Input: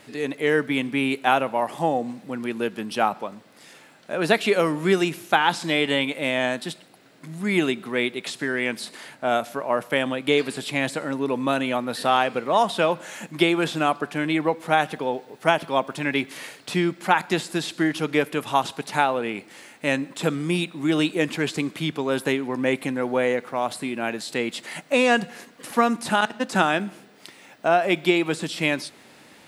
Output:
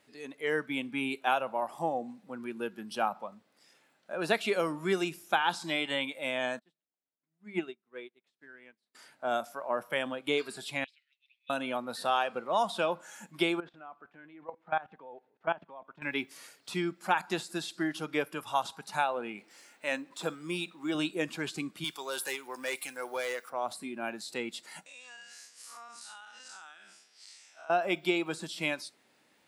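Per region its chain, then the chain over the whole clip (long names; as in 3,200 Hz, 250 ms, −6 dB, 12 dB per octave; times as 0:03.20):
0:06.59–0:08.95: low-pass filter 3,600 Hz 6 dB per octave + mains-hum notches 50/100/150/200 Hz + expander for the loud parts 2.5 to 1, over −37 dBFS
0:10.84–0:11.50: Butterworth high-pass 2,400 Hz 48 dB per octave + high-frequency loss of the air 330 metres + downward expander −57 dBFS
0:13.60–0:16.02: low-pass filter 2,400 Hz + output level in coarse steps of 18 dB
0:19.38–0:20.95: mu-law and A-law mismatch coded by mu + high-pass filter 230 Hz 6 dB per octave + high-shelf EQ 10,000 Hz −4.5 dB
0:21.84–0:23.50: spectral tilt +3.5 dB per octave + hard clipping −19.5 dBFS
0:24.86–0:27.70: spectrum smeared in time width 124 ms + meter weighting curve ITU-R 468 + downward compressor 8 to 1, threshold −35 dBFS
whole clip: noise reduction from a noise print of the clip's start 9 dB; low-shelf EQ 150 Hz −8.5 dB; level −8 dB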